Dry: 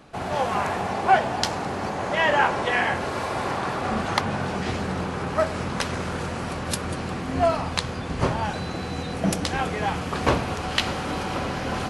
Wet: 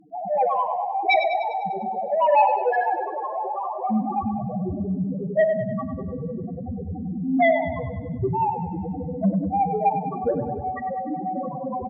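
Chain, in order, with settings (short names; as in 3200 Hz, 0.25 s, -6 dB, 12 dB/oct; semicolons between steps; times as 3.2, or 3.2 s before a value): LPF 1600 Hz 12 dB/oct; low shelf 140 Hz -8.5 dB; in parallel at -11 dB: crossover distortion -40 dBFS; on the sum: loudest bins only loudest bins 1; sine folder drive 9 dB, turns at -13.5 dBFS; on a send: feedback echo 99 ms, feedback 57%, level -8.5 dB; on the sum: two-slope reverb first 0.97 s, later 3.3 s, from -19 dB, DRR 15 dB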